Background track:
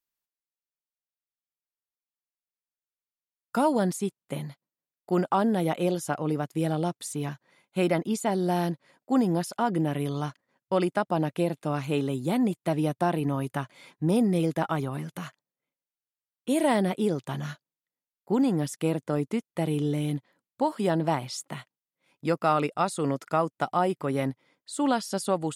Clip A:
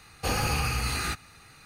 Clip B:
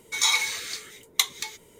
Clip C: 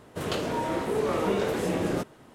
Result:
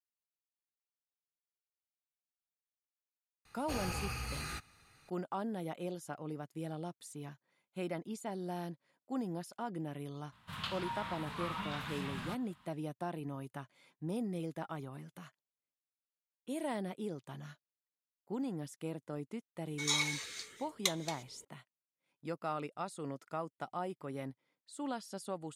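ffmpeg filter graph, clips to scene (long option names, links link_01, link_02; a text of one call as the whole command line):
ffmpeg -i bed.wav -i cue0.wav -i cue1.wav -i cue2.wav -filter_complex "[0:a]volume=-14.5dB[link_01];[1:a]aresample=32000,aresample=44100[link_02];[3:a]firequalizer=gain_entry='entry(190,0);entry(360,-26);entry(1000,5);entry(1900,3);entry(3600,8);entry(6000,-5);entry(12000,-2)':delay=0.05:min_phase=1[link_03];[2:a]lowpass=11000[link_04];[link_02]atrim=end=1.65,asetpts=PTS-STARTPTS,volume=-12dB,afade=type=in:duration=0.004:curve=hsin,afade=type=out:start_time=1.646:duration=0.004:curve=hsin,adelay=152145S[link_05];[link_03]atrim=end=2.34,asetpts=PTS-STARTPTS,volume=-11dB,afade=type=in:duration=0.004:curve=hsin,afade=type=out:start_time=2.336:duration=0.004:curve=hsin,adelay=10320[link_06];[link_04]atrim=end=1.79,asetpts=PTS-STARTPTS,volume=-10.5dB,afade=type=in:duration=0.004:curve=hsin,afade=type=out:start_time=1.786:duration=0.004:curve=hsin,adelay=19660[link_07];[link_01][link_05][link_06][link_07]amix=inputs=4:normalize=0" out.wav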